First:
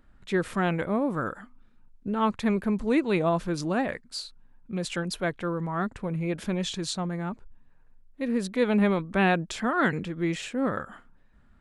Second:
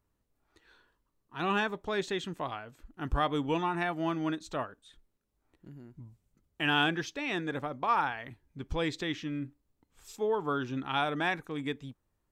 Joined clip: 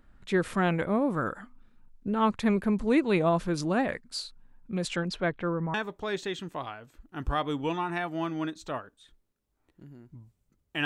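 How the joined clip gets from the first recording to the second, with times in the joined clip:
first
4.87–5.74 s: low-pass 8.1 kHz -> 1.5 kHz
5.74 s: go over to second from 1.59 s

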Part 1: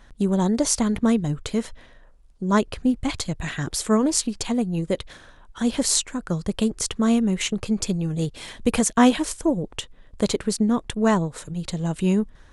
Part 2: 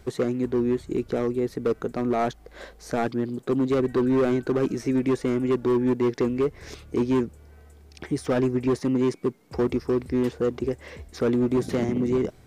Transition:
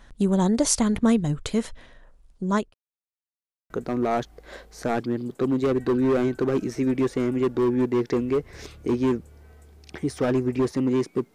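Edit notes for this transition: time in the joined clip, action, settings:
part 1
2.31–2.74 s: fade out equal-power
2.74–3.70 s: mute
3.70 s: go over to part 2 from 1.78 s

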